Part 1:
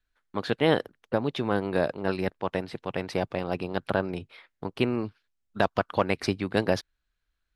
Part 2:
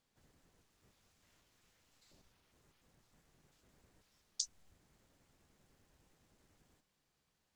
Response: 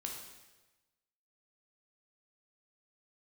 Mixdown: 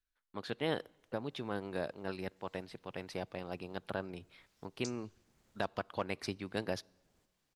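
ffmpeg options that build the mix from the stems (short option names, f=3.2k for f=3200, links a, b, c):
-filter_complex "[0:a]highshelf=f=3.7k:g=6.5,volume=-13dB,asplit=3[a][b][c];[b]volume=-22.5dB[d];[1:a]adelay=450,volume=0.5dB,asplit=2[e][f];[f]volume=-24dB[g];[c]apad=whole_len=352802[h];[e][h]sidechaincompress=threshold=-42dB:ratio=8:attack=38:release=751[i];[2:a]atrim=start_sample=2205[j];[d][g]amix=inputs=2:normalize=0[k];[k][j]afir=irnorm=-1:irlink=0[l];[a][i][l]amix=inputs=3:normalize=0"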